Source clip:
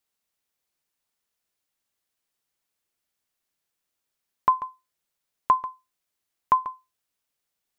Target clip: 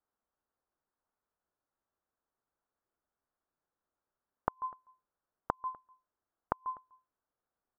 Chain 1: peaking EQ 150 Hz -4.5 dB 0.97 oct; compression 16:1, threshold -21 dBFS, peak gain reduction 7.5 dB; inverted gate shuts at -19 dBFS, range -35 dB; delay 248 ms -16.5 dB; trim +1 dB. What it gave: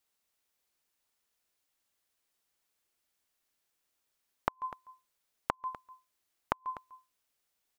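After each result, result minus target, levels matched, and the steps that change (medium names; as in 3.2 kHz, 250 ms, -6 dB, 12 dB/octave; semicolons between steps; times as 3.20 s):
echo-to-direct +9.5 dB; 2 kHz band +5.5 dB
change: delay 248 ms -26 dB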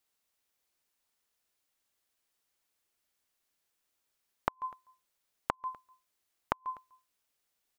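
2 kHz band +5.5 dB
add first: steep low-pass 1.5 kHz 36 dB/octave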